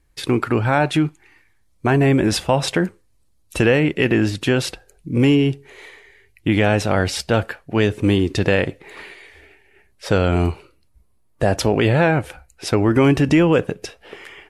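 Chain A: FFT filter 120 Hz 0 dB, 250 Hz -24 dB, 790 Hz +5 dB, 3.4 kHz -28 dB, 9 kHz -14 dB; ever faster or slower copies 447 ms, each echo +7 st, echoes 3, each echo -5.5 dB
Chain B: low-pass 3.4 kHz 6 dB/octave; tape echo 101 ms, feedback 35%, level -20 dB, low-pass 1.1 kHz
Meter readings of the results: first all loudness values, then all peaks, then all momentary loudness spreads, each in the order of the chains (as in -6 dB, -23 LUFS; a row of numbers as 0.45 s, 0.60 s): -24.0 LUFS, -19.0 LUFS; -4.0 dBFS, -4.0 dBFS; 10 LU, 12 LU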